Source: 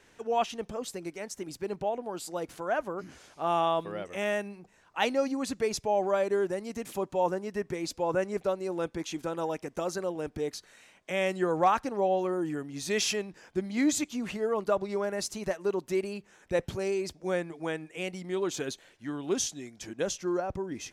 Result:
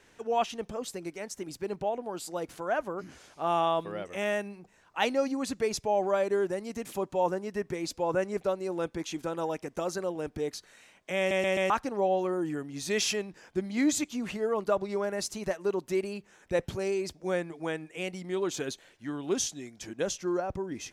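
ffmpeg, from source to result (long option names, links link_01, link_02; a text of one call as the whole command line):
ffmpeg -i in.wav -filter_complex "[0:a]asplit=5[link_01][link_02][link_03][link_04][link_05];[link_01]atrim=end=11.312[link_06];[link_02]atrim=start=11.178:end=11.312[link_07];[link_03]atrim=start=11.178:end=11.312[link_08];[link_04]atrim=start=11.178:end=11.312[link_09];[link_05]atrim=start=11.698[link_10];[link_06][link_07]acrossfade=duration=0.004:curve1=hsin:curve2=hsin[link_11];[link_11][link_08]acrossfade=duration=0.004:curve1=hsin:curve2=hsin[link_12];[link_12][link_09]acrossfade=duration=0.004:curve1=hsin:curve2=hsin[link_13];[link_13][link_10]acrossfade=duration=0.004:curve1=hsin:curve2=hsin" out.wav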